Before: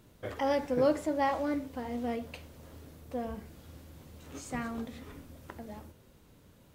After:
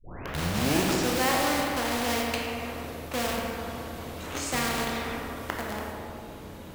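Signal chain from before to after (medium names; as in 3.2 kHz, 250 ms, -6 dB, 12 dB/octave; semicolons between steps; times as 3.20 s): tape start-up on the opening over 1.31 s; tone controls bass -3 dB, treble -5 dB; in parallel at -8.5 dB: word length cut 6-bit, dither none; on the sum: reverberation RT60 1.9 s, pre-delay 16 ms, DRR 0.5 dB; spectrum-flattening compressor 2:1; trim -2 dB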